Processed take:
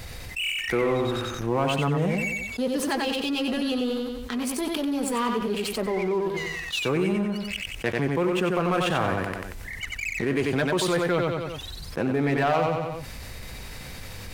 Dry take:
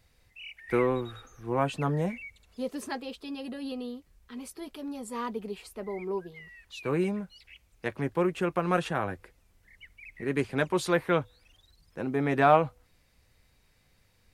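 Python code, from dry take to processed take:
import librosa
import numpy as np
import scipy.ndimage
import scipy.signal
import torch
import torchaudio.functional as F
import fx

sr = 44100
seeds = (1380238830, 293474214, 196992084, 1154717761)

y = fx.dynamic_eq(x, sr, hz=3000.0, q=2.5, threshold_db=-55.0, ratio=4.0, max_db=5)
y = fx.leveller(y, sr, passes=2)
y = fx.echo_feedback(y, sr, ms=92, feedback_pct=29, wet_db=-5.5)
y = fx.env_flatten(y, sr, amount_pct=70)
y = y * 10.0 ** (-9.0 / 20.0)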